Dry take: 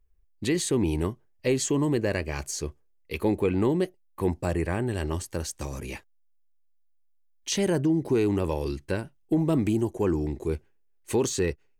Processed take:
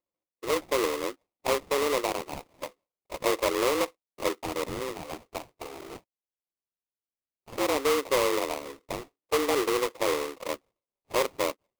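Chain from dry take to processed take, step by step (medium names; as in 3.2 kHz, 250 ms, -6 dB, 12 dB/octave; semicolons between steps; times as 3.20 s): mistuned SSB +140 Hz 180–2700 Hz; touch-sensitive flanger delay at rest 5.8 ms, full sweep at -23 dBFS; sample-rate reducer 1.6 kHz, jitter 20%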